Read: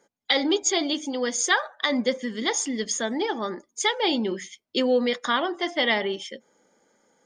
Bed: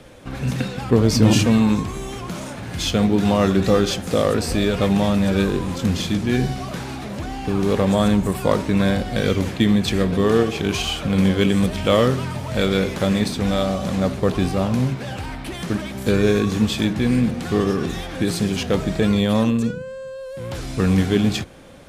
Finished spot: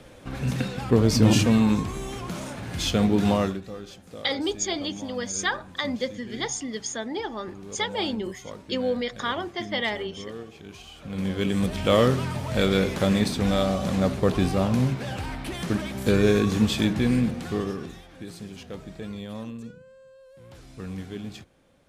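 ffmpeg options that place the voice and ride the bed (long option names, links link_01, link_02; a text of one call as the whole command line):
ffmpeg -i stem1.wav -i stem2.wav -filter_complex "[0:a]adelay=3950,volume=-4.5dB[link_01];[1:a]volume=15.5dB,afade=type=out:start_time=3.32:duration=0.29:silence=0.125893,afade=type=in:start_time=10.93:duration=1.09:silence=0.112202,afade=type=out:start_time=16.96:duration=1.06:silence=0.16788[link_02];[link_01][link_02]amix=inputs=2:normalize=0" out.wav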